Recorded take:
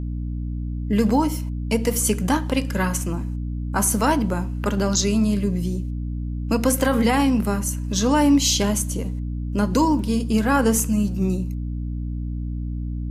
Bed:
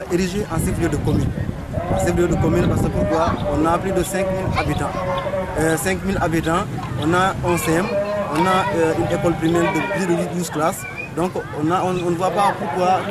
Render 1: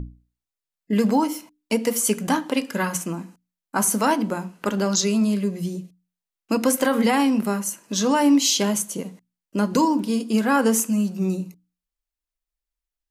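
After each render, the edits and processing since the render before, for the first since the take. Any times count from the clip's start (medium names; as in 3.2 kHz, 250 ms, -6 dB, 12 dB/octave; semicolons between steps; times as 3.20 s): hum notches 60/120/180/240/300 Hz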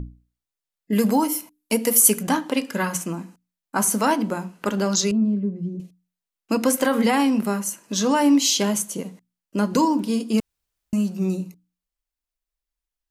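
0.92–2.23 s: peaking EQ 12 kHz +13.5 dB; 5.11–5.80 s: band-pass filter 220 Hz, Q 1.1; 10.40–10.93 s: room tone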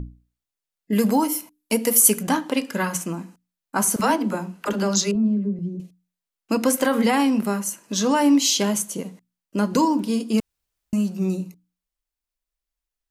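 3.96–5.59 s: phase dispersion lows, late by 41 ms, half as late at 420 Hz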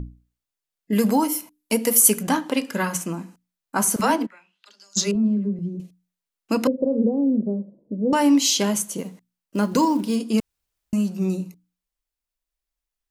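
4.25–4.96 s: band-pass filter 1.7 kHz -> 7.6 kHz, Q 7.1; 6.67–8.13 s: elliptic low-pass 560 Hz, stop band 80 dB; 8.98–10.16 s: short-mantissa float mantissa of 4-bit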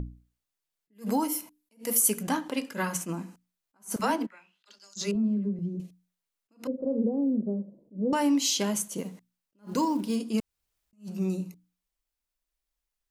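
compression 1.5:1, threshold -35 dBFS, peak gain reduction 9 dB; attacks held to a fixed rise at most 270 dB/s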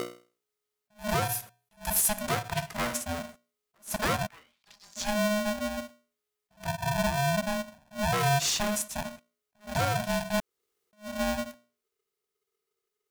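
saturation -17.5 dBFS, distortion -21 dB; polarity switched at an audio rate 420 Hz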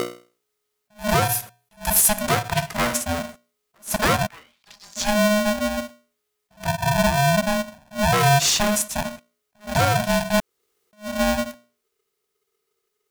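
trim +8.5 dB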